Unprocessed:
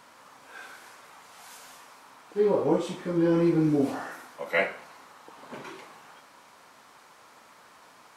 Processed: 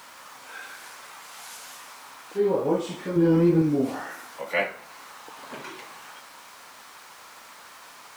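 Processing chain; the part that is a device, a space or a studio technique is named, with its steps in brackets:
0:03.16–0:03.62: low-shelf EQ 250 Hz +8.5 dB
noise-reduction cassette on a plain deck (one half of a high-frequency compander encoder only; tape wow and flutter; white noise bed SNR 30 dB)

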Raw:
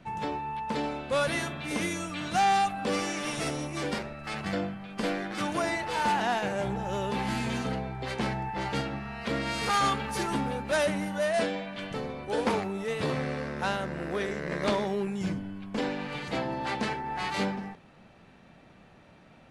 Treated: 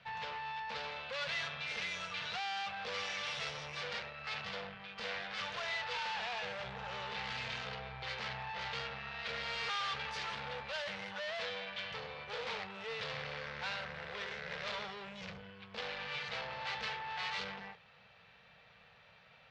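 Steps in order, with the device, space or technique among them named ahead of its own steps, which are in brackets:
scooped metal amplifier (tube saturation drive 36 dB, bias 0.65; loudspeaker in its box 78–4,500 Hz, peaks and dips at 79 Hz −6 dB, 320 Hz −7 dB, 470 Hz +10 dB; guitar amp tone stack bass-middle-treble 10-0-10)
level +7.5 dB

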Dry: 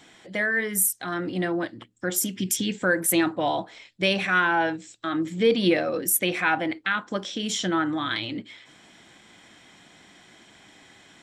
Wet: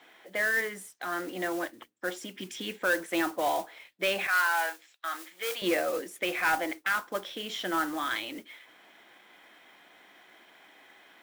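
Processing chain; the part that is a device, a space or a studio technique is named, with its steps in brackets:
carbon microphone (band-pass filter 440–2,800 Hz; soft clipping −16.5 dBFS, distortion −18 dB; noise that follows the level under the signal 15 dB)
0:04.27–0:05.62: high-pass filter 840 Hz 12 dB per octave
level −1 dB

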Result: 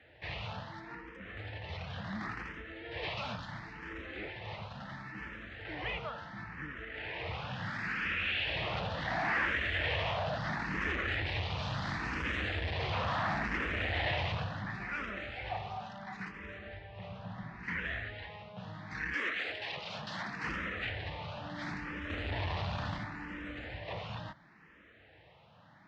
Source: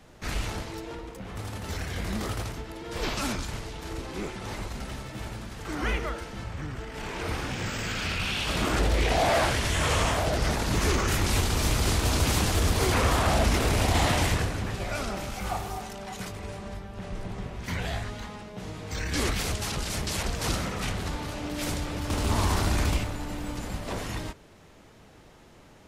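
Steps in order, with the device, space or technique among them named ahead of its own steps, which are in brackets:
0:19.12–0:20.41: high-pass filter 420 Hz → 130 Hz 12 dB per octave
barber-pole phaser into a guitar amplifier (frequency shifter mixed with the dry sound +0.72 Hz; soft clipping −24 dBFS, distortion −14 dB; loudspeaker in its box 88–3,800 Hz, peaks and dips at 250 Hz −6 dB, 390 Hz −8 dB, 1,800 Hz +9 dB, 2,600 Hz +3 dB)
level −3 dB

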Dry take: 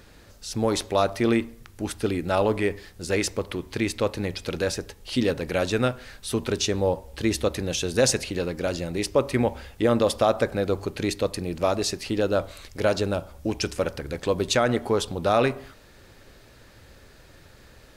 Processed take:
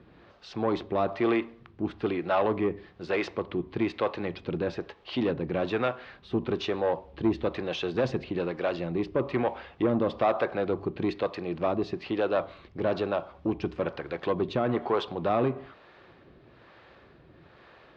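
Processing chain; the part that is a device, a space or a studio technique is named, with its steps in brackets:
guitar amplifier with harmonic tremolo (two-band tremolo in antiphase 1.1 Hz, depth 70%, crossover 420 Hz; soft clipping −21 dBFS, distortion −14 dB; loudspeaker in its box 79–3,500 Hz, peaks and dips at 91 Hz −5 dB, 160 Hz +4 dB, 350 Hz +6 dB, 720 Hz +5 dB, 1,100 Hz +7 dB)

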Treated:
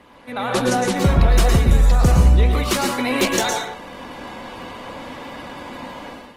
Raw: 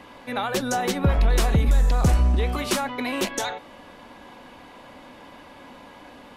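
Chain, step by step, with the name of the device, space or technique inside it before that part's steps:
speakerphone in a meeting room (convolution reverb RT60 0.40 s, pre-delay 107 ms, DRR 3 dB; automatic gain control gain up to 12 dB; level −2.5 dB; Opus 20 kbit/s 48,000 Hz)

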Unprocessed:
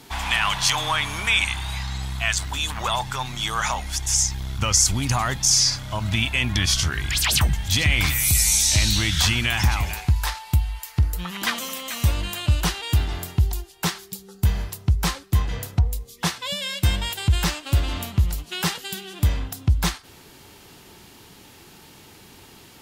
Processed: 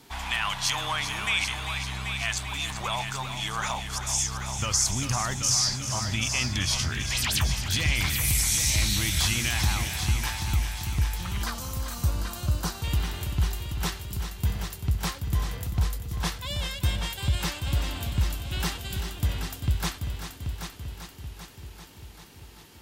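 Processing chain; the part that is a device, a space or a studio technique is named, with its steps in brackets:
multi-head tape echo (echo machine with several playback heads 391 ms, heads first and second, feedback 58%, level −10 dB; tape wow and flutter 21 cents)
0:11.43–0:12.84: flat-topped bell 2,500 Hz −9 dB 1.2 octaves
level −6.5 dB

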